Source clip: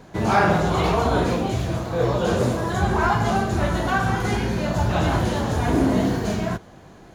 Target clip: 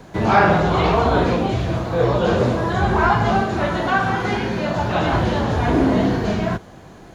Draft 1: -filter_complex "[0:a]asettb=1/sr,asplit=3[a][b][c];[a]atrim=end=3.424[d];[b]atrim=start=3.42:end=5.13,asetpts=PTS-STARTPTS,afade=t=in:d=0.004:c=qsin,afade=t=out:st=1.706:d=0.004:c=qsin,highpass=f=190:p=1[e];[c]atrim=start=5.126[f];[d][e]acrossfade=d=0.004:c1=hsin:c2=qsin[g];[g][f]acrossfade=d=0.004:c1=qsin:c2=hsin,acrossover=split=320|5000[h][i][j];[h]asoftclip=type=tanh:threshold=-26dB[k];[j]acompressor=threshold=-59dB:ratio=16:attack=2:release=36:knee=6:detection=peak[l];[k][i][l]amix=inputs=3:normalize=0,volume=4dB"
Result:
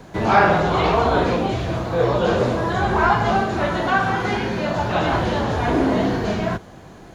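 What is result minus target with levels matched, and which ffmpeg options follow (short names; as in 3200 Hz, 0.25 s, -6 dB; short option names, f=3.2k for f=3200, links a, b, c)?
soft clip: distortion +8 dB
-filter_complex "[0:a]asettb=1/sr,asplit=3[a][b][c];[a]atrim=end=3.424[d];[b]atrim=start=3.42:end=5.13,asetpts=PTS-STARTPTS,afade=t=in:d=0.004:c=qsin,afade=t=out:st=1.706:d=0.004:c=qsin,highpass=f=190:p=1[e];[c]atrim=start=5.126[f];[d][e]acrossfade=d=0.004:c1=hsin:c2=qsin[g];[g][f]acrossfade=d=0.004:c1=qsin:c2=hsin,acrossover=split=320|5000[h][i][j];[h]asoftclip=type=tanh:threshold=-18dB[k];[j]acompressor=threshold=-59dB:ratio=16:attack=2:release=36:knee=6:detection=peak[l];[k][i][l]amix=inputs=3:normalize=0,volume=4dB"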